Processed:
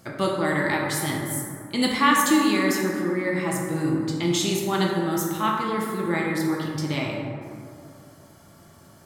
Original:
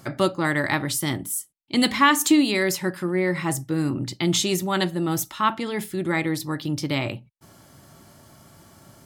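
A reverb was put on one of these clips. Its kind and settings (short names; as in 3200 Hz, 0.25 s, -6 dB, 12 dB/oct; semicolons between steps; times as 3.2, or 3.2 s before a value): plate-style reverb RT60 2.5 s, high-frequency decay 0.35×, DRR -2 dB; gain -4.5 dB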